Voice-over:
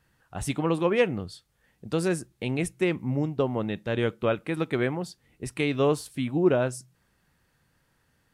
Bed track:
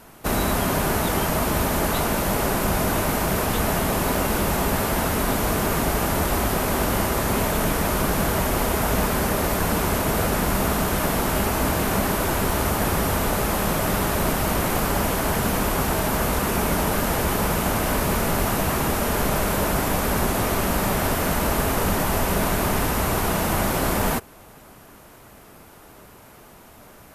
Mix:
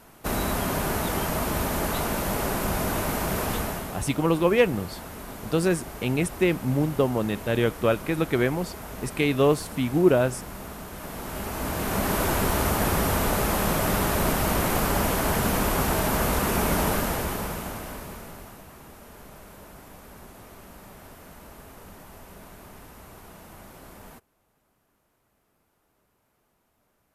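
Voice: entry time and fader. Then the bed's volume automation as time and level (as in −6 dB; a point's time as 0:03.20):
3.60 s, +3.0 dB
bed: 0:03.54 −4.5 dB
0:04.07 −16.5 dB
0:10.92 −16.5 dB
0:12.18 −1.5 dB
0:16.89 −1.5 dB
0:18.67 −24 dB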